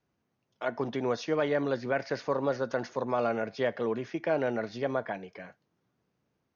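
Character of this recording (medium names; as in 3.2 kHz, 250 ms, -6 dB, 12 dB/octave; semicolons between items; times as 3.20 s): noise floor -80 dBFS; spectral tilt -4.5 dB/octave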